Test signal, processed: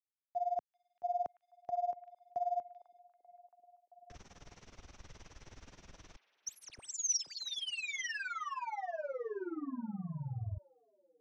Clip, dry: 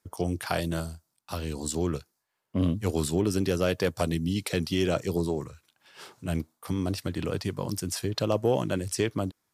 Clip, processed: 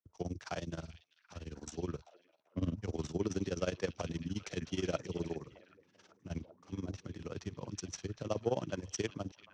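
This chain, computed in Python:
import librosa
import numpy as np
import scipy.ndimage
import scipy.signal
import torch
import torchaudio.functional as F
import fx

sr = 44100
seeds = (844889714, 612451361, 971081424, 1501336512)

y = scipy.signal.medfilt(x, 9)
y = y * (1.0 - 0.9 / 2.0 + 0.9 / 2.0 * np.cos(2.0 * np.pi * 19.0 * (np.arange(len(y)) / sr)))
y = fx.ladder_lowpass(y, sr, hz=6200.0, resonance_pct=75)
y = fx.echo_stepped(y, sr, ms=389, hz=3100.0, octaves=-0.7, feedback_pct=70, wet_db=-8.5)
y = fx.band_widen(y, sr, depth_pct=40)
y = F.gain(torch.from_numpy(y), 5.0).numpy()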